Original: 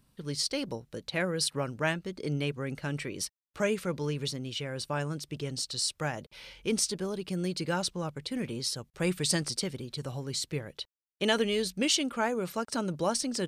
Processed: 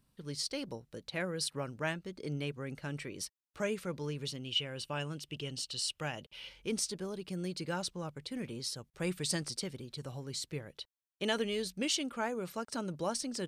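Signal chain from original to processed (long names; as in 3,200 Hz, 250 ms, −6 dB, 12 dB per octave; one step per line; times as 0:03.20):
0:04.28–0:06.49: parametric band 2,900 Hz +13.5 dB 0.35 octaves
level −6 dB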